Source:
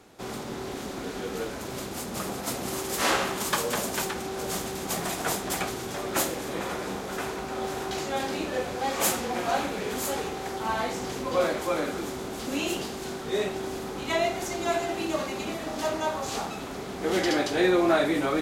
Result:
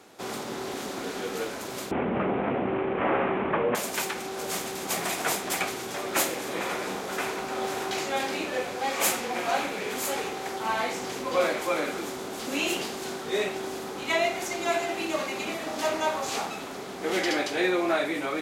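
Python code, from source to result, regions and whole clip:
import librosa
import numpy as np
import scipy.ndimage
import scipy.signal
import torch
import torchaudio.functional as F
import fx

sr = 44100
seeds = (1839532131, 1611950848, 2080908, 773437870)

y = fx.chain(x, sr, fx.cvsd(bps=16000),
    fx.tilt_shelf(db=8.5, hz=1400.0),
    fx.env_flatten(amount_pct=50), at=(1.91, 3.75))
y = fx.highpass(y, sr, hz=290.0, slope=6)
y = fx.dynamic_eq(y, sr, hz=2300.0, q=2.7, threshold_db=-46.0, ratio=4.0, max_db=5)
y = fx.rider(y, sr, range_db=3, speed_s=2.0)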